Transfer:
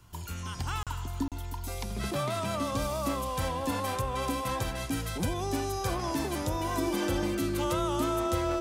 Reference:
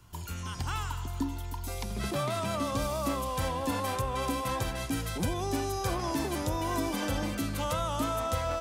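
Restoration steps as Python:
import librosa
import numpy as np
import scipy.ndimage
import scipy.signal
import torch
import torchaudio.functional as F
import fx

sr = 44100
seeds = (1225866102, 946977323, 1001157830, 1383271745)

y = fx.notch(x, sr, hz=350.0, q=30.0)
y = fx.fix_interpolate(y, sr, at_s=(0.83, 1.28), length_ms=37.0)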